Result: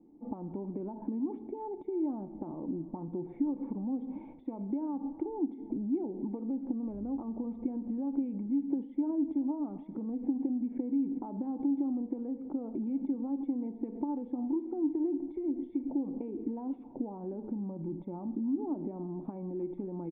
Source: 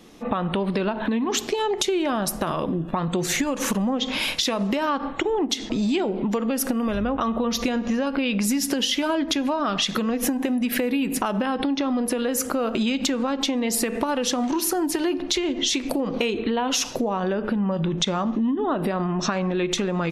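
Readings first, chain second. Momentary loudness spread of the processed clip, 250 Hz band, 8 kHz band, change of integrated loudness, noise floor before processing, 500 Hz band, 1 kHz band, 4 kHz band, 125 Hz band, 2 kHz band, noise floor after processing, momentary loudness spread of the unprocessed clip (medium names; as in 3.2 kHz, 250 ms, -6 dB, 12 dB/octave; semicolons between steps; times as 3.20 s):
7 LU, -8.0 dB, under -40 dB, -11.5 dB, -33 dBFS, -15.0 dB, -20.0 dB, under -40 dB, under -10 dB, under -40 dB, -49 dBFS, 2 LU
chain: cascade formant filter u; delay 322 ms -19.5 dB; trim -3.5 dB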